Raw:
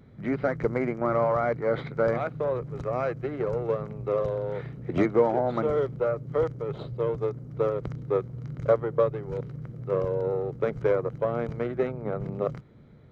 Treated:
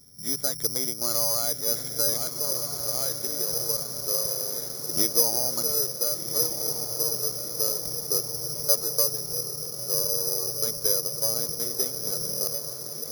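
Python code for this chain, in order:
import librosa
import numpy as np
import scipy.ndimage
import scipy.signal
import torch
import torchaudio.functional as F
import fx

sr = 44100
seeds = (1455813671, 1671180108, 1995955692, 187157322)

p1 = x + fx.echo_diffused(x, sr, ms=1411, feedback_pct=59, wet_db=-7, dry=0)
p2 = (np.kron(scipy.signal.resample_poly(p1, 1, 8), np.eye(8)[0]) * 8)[:len(p1)]
y = F.gain(torch.from_numpy(p2), -10.0).numpy()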